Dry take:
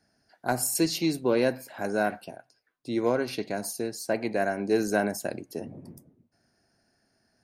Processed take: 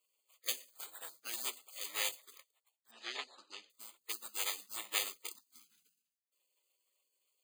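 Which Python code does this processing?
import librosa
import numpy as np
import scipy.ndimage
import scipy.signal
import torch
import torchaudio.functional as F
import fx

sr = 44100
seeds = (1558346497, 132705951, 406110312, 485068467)

y = scipy.signal.sosfilt(scipy.signal.butter(4, 1100.0, 'highpass', fs=sr, output='sos'), x)
y = np.repeat(scipy.signal.resample_poly(y, 1, 8), 8)[:len(y)]
y = fx.high_shelf(y, sr, hz=3900.0, db=-5.0)
y = fx.spec_gate(y, sr, threshold_db=-25, keep='weak')
y = fx.lowpass(y, sr, hz=5200.0, slope=24, at=(2.91, 3.7))
y = fx.band_squash(y, sr, depth_pct=100, at=(5.35, 5.83))
y = y * 10.0 ** (15.0 / 20.0)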